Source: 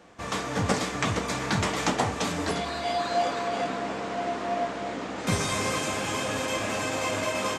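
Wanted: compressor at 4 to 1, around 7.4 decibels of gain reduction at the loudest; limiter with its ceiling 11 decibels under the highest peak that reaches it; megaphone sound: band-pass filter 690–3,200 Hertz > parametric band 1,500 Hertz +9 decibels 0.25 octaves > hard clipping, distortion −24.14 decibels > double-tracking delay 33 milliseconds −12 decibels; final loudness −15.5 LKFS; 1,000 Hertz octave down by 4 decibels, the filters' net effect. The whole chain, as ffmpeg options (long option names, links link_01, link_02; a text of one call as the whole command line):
ffmpeg -i in.wav -filter_complex "[0:a]equalizer=frequency=1000:width_type=o:gain=-4.5,acompressor=threshold=-30dB:ratio=4,alimiter=level_in=1.5dB:limit=-24dB:level=0:latency=1,volume=-1.5dB,highpass=690,lowpass=3200,equalizer=frequency=1500:width_type=o:width=0.25:gain=9,asoftclip=type=hard:threshold=-31dB,asplit=2[link_01][link_02];[link_02]adelay=33,volume=-12dB[link_03];[link_01][link_03]amix=inputs=2:normalize=0,volume=21.5dB" out.wav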